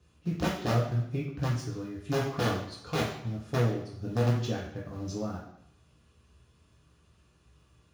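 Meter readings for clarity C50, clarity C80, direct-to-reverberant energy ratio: 4.5 dB, 8.0 dB, −4.5 dB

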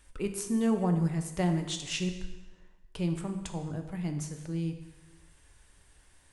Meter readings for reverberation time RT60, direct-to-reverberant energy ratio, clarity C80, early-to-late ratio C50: 1.1 s, 5.5 dB, 10.0 dB, 8.5 dB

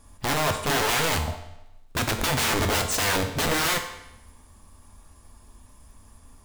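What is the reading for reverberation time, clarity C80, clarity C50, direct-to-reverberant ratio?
0.90 s, 11.0 dB, 8.5 dB, 4.5 dB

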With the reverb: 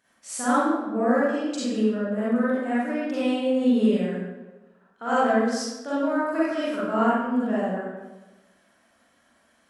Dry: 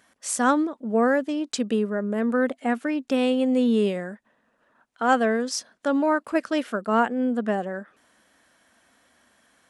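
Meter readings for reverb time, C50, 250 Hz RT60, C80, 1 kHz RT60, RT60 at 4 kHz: 1.2 s, −5.0 dB, 1.2 s, −0.5 dB, 1.1 s, 0.75 s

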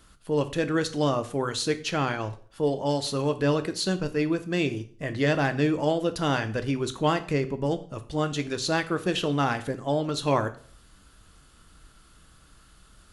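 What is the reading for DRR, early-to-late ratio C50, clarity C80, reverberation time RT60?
8.5 dB, 15.0 dB, 19.0 dB, 0.50 s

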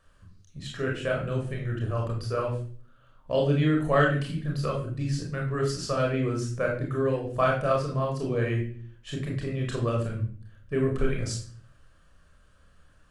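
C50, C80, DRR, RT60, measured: 5.0 dB, 10.0 dB, −1.0 dB, 0.45 s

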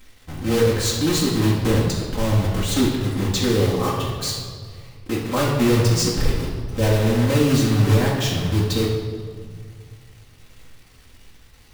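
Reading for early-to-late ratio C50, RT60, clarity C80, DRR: 2.0 dB, 1.9 s, 4.5 dB, −4.5 dB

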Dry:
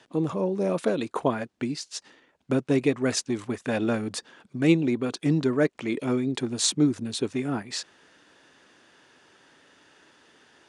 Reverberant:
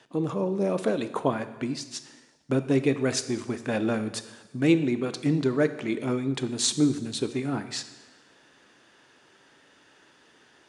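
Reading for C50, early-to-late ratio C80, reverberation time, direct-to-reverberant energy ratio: 12.5 dB, 14.0 dB, 1.2 s, 10.5 dB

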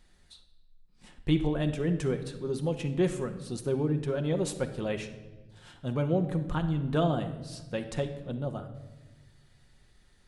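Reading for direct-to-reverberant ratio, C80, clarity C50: 6.0 dB, 13.0 dB, 10.5 dB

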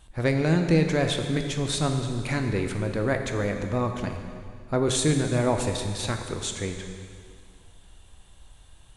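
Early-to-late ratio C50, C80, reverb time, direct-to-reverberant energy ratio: 6.0 dB, 7.0 dB, 2.2 s, 4.5 dB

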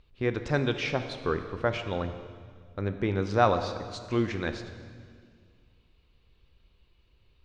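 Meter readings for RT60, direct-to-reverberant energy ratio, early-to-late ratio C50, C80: 2.0 s, 8.0 dB, 9.5 dB, 10.5 dB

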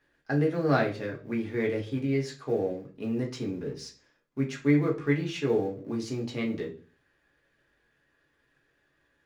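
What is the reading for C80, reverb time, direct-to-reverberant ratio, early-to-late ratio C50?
18.0 dB, 0.40 s, −1.0 dB, 11.5 dB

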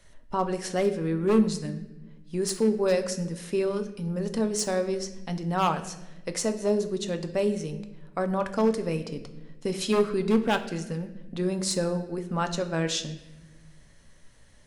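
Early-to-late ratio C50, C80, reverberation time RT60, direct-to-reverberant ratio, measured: 12.0 dB, 14.0 dB, 1.1 s, 7.5 dB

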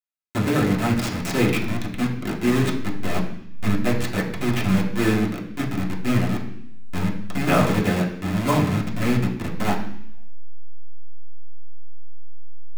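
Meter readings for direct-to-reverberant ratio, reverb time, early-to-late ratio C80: −3.5 dB, 0.70 s, 10.5 dB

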